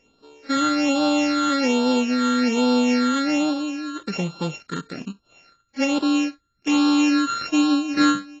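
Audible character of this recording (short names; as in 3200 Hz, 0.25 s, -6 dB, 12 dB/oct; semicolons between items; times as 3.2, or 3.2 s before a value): a buzz of ramps at a fixed pitch in blocks of 32 samples; phasing stages 8, 1.2 Hz, lowest notch 730–2000 Hz; AAC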